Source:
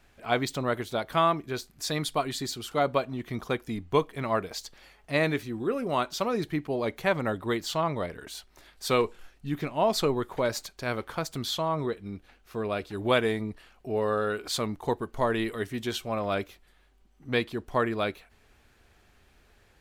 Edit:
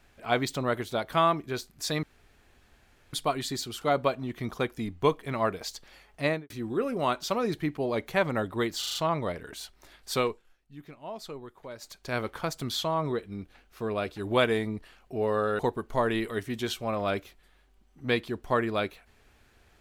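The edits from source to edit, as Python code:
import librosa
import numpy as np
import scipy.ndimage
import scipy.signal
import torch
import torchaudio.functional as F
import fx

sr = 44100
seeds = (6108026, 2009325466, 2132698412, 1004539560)

y = fx.studio_fade_out(x, sr, start_s=5.12, length_s=0.28)
y = fx.edit(y, sr, fx.insert_room_tone(at_s=2.03, length_s=1.1),
    fx.stutter(start_s=7.69, slice_s=0.04, count=5),
    fx.fade_down_up(start_s=8.86, length_s=1.97, db=-15.0, fade_s=0.3),
    fx.cut(start_s=14.33, length_s=0.5), tone=tone)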